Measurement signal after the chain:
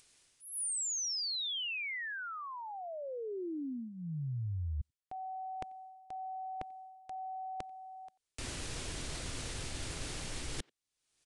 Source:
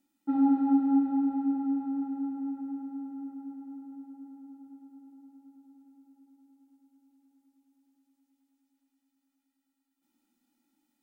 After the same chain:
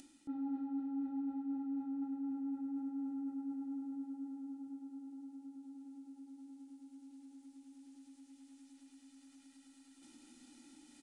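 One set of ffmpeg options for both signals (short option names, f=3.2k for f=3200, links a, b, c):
-filter_complex "[0:a]areverse,acompressor=threshold=-40dB:ratio=8,areverse,equalizer=f=200:w=5.2:g=-12,aresample=22050,aresample=44100,acompressor=mode=upward:threshold=-49dB:ratio=2.5,equalizer=f=920:w=0.61:g=-8,asplit=2[a][b];[b]adelay=90,highpass=300,lowpass=3.4k,asoftclip=type=hard:threshold=-39dB,volume=-25dB[c];[a][c]amix=inputs=2:normalize=0,volume=5.5dB"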